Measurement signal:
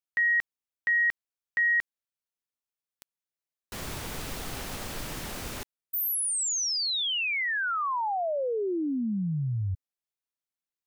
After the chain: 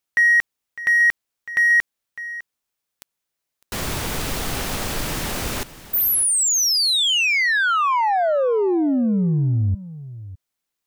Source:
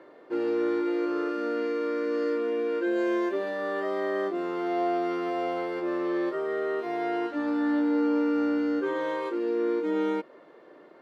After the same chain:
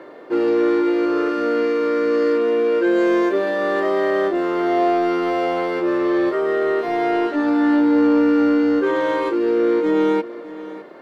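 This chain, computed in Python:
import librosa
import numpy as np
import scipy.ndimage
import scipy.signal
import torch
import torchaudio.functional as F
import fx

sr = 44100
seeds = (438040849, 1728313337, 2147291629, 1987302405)

p1 = 10.0 ** (-33.0 / 20.0) * np.tanh(x / 10.0 ** (-33.0 / 20.0))
p2 = x + (p1 * 10.0 ** (-6.0 / 20.0))
p3 = p2 + 10.0 ** (-16.0 / 20.0) * np.pad(p2, (int(605 * sr / 1000.0), 0))[:len(p2)]
y = p3 * 10.0 ** (8.0 / 20.0)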